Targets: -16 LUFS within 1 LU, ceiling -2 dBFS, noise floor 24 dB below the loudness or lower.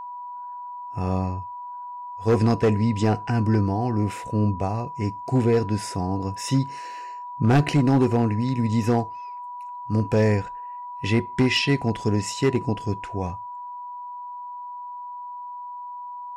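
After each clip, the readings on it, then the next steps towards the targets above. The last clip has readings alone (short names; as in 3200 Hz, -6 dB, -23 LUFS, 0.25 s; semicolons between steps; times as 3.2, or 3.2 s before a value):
clipped 0.9%; flat tops at -13.0 dBFS; steady tone 980 Hz; tone level -33 dBFS; loudness -23.5 LUFS; peak -13.0 dBFS; loudness target -16.0 LUFS
-> clip repair -13 dBFS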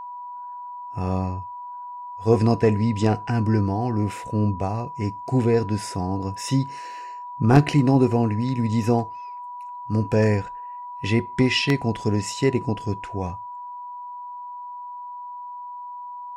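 clipped 0.0%; steady tone 980 Hz; tone level -33 dBFS
-> notch 980 Hz, Q 30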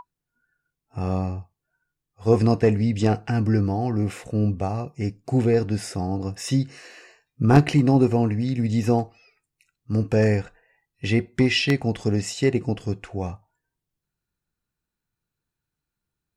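steady tone none; loudness -23.0 LUFS; peak -4.0 dBFS; loudness target -16.0 LUFS
-> gain +7 dB; limiter -2 dBFS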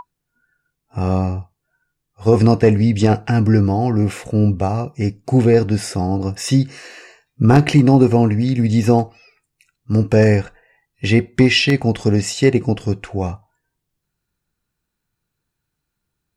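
loudness -16.5 LUFS; peak -2.0 dBFS; noise floor -78 dBFS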